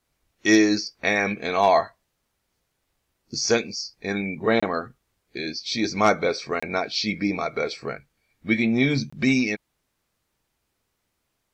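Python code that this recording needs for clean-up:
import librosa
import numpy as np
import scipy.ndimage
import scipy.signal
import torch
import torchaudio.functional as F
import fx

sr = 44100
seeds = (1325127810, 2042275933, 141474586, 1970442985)

y = fx.fix_declip(x, sr, threshold_db=-7.0)
y = fx.fix_interpolate(y, sr, at_s=(4.6, 6.6, 9.1), length_ms=25.0)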